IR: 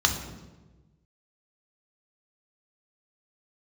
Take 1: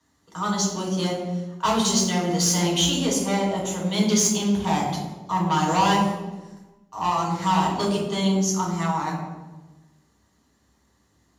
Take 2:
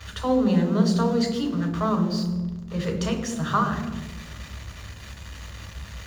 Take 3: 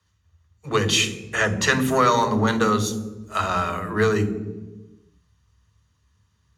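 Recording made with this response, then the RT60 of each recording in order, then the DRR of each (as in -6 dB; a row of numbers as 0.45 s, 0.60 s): 2; 1.2 s, 1.2 s, 1.2 s; -2.5 dB, 3.5 dB, 12.0 dB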